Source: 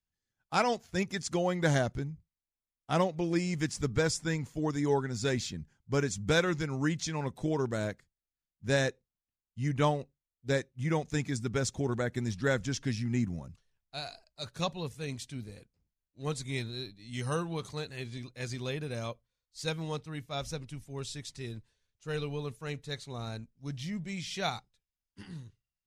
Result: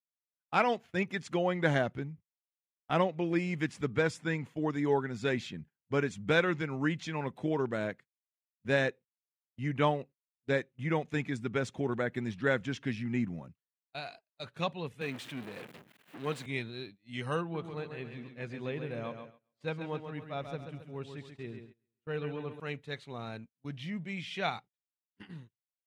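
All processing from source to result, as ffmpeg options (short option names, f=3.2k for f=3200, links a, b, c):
-filter_complex "[0:a]asettb=1/sr,asplit=3[a][b][c];[a]atrim=end=15.014[d];[b]atrim=start=15.01:end=16.46,asetpts=PTS-STARTPTS,afade=t=in:d=0.004:c=qsin,afade=t=out:st=1.446:d=0.004:c=qsin,aeval=exprs='val(0)+0.5*0.0126*sgn(val(0))':c=same,highpass=160,equalizer=f=1.7k:t=o:w=0.21:g=3[e];[c]atrim=start=16.456[f];[d][e]acrossfade=d=0.004:c1=hsin:c2=qsin[g];[g][f]acrossfade=d=0.004:c1=qsin:c2=hsin,asettb=1/sr,asplit=3[h][i][j];[h]atrim=end=17.414[k];[i]atrim=start=17.41:end=22.6,asetpts=PTS-STARTPTS,afade=t=in:d=0.004:c=qsin,afade=t=out:st=5.186:d=0.004:c=qsin,highshelf=f=2.4k:g=-11,aecho=1:1:135|270|405|540|675:0.422|0.19|0.0854|0.0384|0.0173,atrim=end_sample=228879[l];[j]atrim=start=22.596[m];[k][l]acrossfade=d=0.004:c1=hsin:c2=qsin[n];[n][m]acrossfade=d=0.004:c1=qsin:c2=hsin,highpass=150,agate=range=-24dB:threshold=-49dB:ratio=16:detection=peak,highshelf=f=3.9k:t=q:w=1.5:g=-11"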